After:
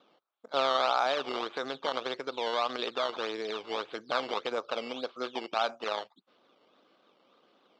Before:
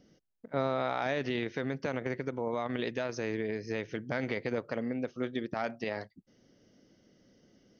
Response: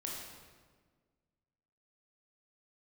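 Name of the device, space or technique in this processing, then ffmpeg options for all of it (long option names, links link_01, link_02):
circuit-bent sampling toy: -af "acrusher=samples=12:mix=1:aa=0.000001:lfo=1:lforange=12:lforate=1.7,highpass=540,equalizer=frequency=810:width_type=q:width=4:gain=3,equalizer=frequency=1200:width_type=q:width=4:gain=8,equalizer=frequency=1900:width_type=q:width=4:gain=-10,equalizer=frequency=3600:width_type=q:width=4:gain=7,lowpass=frequency=4500:width=0.5412,lowpass=frequency=4500:width=1.3066,volume=4.5dB"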